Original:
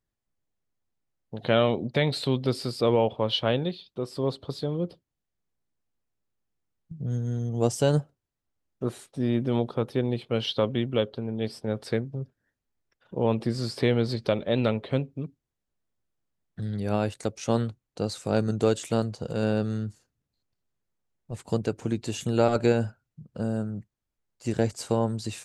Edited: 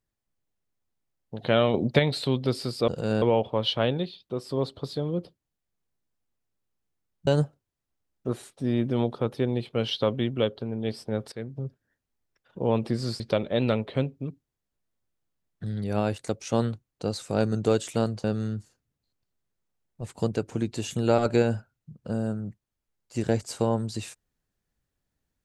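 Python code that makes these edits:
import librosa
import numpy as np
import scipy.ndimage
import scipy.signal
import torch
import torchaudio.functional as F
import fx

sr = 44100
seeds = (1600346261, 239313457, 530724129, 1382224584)

y = fx.edit(x, sr, fx.clip_gain(start_s=1.74, length_s=0.25, db=5.5),
    fx.cut(start_s=6.93, length_s=0.9),
    fx.fade_in_from(start_s=11.88, length_s=0.27, floor_db=-22.5),
    fx.cut(start_s=13.76, length_s=0.4),
    fx.move(start_s=19.2, length_s=0.34, to_s=2.88), tone=tone)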